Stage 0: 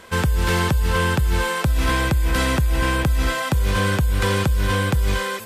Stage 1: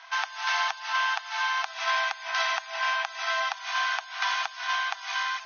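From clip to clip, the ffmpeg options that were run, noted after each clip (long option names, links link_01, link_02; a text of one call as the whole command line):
ffmpeg -i in.wav -af "afftfilt=real='re*between(b*sr/4096,650,6500)':imag='im*between(b*sr/4096,650,6500)':win_size=4096:overlap=0.75,volume=-2dB" out.wav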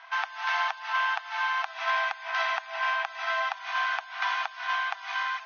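ffmpeg -i in.wav -af "bass=frequency=250:gain=13,treble=frequency=4000:gain=-14" out.wav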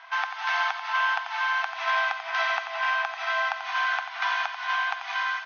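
ffmpeg -i in.wav -af "aecho=1:1:89|178|267|356|445|534|623:0.355|0.209|0.124|0.0729|0.043|0.0254|0.015,volume=1.5dB" out.wav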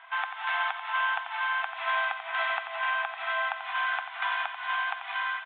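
ffmpeg -i in.wav -af "aresample=8000,aresample=44100,volume=-3dB" out.wav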